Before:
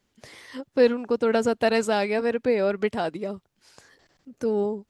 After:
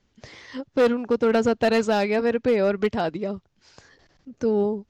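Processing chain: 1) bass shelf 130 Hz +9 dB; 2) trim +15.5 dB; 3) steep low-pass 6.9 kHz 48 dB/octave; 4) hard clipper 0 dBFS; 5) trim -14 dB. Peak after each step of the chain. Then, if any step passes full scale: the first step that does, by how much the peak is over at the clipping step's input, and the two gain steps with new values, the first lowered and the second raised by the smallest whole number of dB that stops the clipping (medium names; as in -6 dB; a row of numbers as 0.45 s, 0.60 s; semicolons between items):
-7.0 dBFS, +8.5 dBFS, +8.5 dBFS, 0.0 dBFS, -14.0 dBFS; step 2, 8.5 dB; step 2 +6.5 dB, step 5 -5 dB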